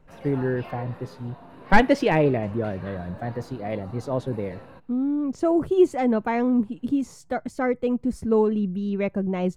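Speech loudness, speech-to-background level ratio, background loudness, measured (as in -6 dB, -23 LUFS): -24.5 LUFS, 19.5 dB, -44.0 LUFS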